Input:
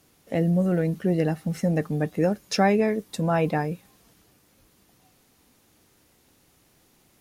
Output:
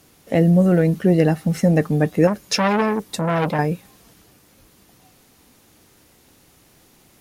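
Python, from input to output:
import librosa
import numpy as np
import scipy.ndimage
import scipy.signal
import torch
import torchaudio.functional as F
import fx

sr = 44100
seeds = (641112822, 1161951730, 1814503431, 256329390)

y = fx.transformer_sat(x, sr, knee_hz=1400.0, at=(2.27, 3.59))
y = y * 10.0 ** (7.5 / 20.0)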